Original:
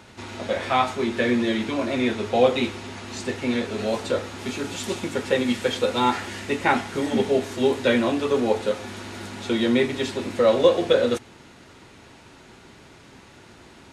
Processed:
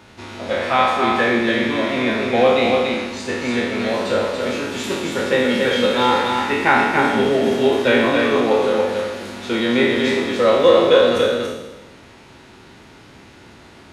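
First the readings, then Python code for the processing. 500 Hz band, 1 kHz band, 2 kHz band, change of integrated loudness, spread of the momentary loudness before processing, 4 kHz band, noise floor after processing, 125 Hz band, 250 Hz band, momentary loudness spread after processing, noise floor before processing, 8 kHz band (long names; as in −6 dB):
+6.0 dB, +7.5 dB, +9.0 dB, +6.0 dB, 11 LU, +6.5 dB, −45 dBFS, +3.0 dB, +4.0 dB, 10 LU, −49 dBFS, +2.0 dB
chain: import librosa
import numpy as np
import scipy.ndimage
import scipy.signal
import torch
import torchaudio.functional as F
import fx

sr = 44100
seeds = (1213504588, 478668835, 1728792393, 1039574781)

p1 = fx.spec_trails(x, sr, decay_s=1.15)
p2 = fx.peak_eq(p1, sr, hz=7800.0, db=-4.5, octaves=0.71)
p3 = p2 + fx.echo_single(p2, sr, ms=284, db=-4.0, dry=0)
y = fx.dynamic_eq(p3, sr, hz=1600.0, q=0.75, threshold_db=-32.0, ratio=4.0, max_db=4)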